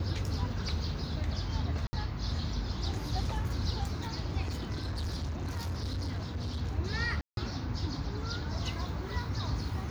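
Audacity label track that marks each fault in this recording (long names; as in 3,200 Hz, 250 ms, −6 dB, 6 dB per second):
1.870000	1.930000	drop-out 60 ms
4.410000	6.620000	clipping −31 dBFS
7.210000	7.370000	drop-out 162 ms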